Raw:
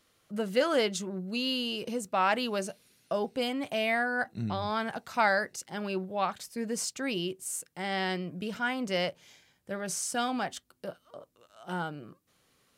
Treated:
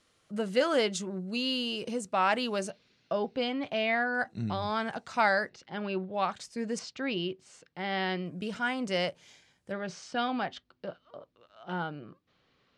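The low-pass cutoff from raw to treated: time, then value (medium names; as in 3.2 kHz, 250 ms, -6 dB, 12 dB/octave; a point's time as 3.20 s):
low-pass 24 dB/octave
9.7 kHz
from 2.70 s 4.9 kHz
from 4.15 s 8.3 kHz
from 5.49 s 4.1 kHz
from 6.14 s 8.1 kHz
from 6.79 s 4.5 kHz
from 8.26 s 9.6 kHz
from 9.72 s 4.4 kHz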